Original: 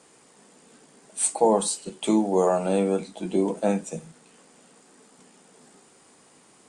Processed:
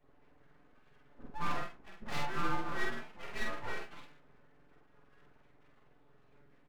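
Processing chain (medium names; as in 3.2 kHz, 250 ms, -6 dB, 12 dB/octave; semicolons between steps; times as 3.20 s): spectrum inverted on a logarithmic axis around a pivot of 530 Hz; peaking EQ 540 Hz -8.5 dB 0.46 oct; in parallel at -2.5 dB: compression, threshold -34 dBFS, peak gain reduction 15 dB; on the sum: formant shift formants +3 st; wavefolder -18 dBFS; inharmonic resonator 140 Hz, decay 0.38 s, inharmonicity 0.008; full-wave rectifier; doubling 47 ms -2.5 dB; trim +1.5 dB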